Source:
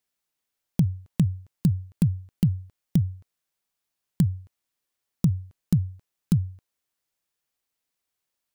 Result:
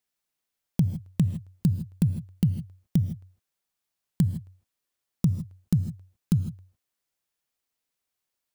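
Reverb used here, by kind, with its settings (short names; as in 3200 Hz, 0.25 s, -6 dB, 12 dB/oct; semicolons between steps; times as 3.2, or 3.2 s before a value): non-linear reverb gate 0.18 s rising, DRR 11.5 dB; gain -1.5 dB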